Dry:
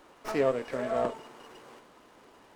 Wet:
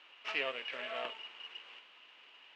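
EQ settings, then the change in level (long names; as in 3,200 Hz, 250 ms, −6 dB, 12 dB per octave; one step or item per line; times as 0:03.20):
resonant band-pass 2,800 Hz, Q 5.2
high-frequency loss of the air 87 metres
+14.0 dB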